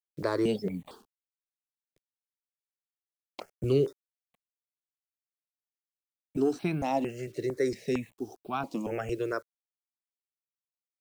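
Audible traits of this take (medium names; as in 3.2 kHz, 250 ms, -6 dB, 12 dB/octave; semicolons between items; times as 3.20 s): a quantiser's noise floor 10-bit, dither none; notches that jump at a steady rate 4.4 Hz 230–1900 Hz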